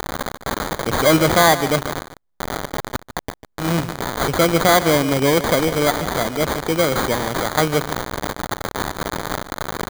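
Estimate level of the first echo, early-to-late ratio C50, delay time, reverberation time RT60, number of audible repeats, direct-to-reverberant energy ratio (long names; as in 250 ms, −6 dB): −13.0 dB, no reverb audible, 147 ms, no reverb audible, 1, no reverb audible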